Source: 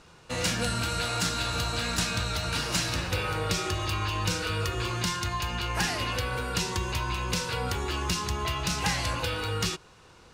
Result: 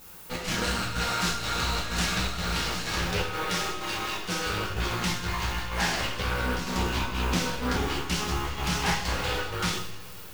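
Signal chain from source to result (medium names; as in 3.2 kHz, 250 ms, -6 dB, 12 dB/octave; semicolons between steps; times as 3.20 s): 3.22–4.45 s: high-pass 180 Hz 12 dB/octave; 6.44–7.85 s: peaking EQ 260 Hz +13.5 dB 0.4 oct; low-pass 6.9 kHz; half-wave rectifier; added noise violet -52 dBFS; square tremolo 2.1 Hz, depth 65%, duty 75%; two-slope reverb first 0.54 s, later 3.9 s, from -20 dB, DRR -5.5 dB; loudspeaker Doppler distortion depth 0.25 ms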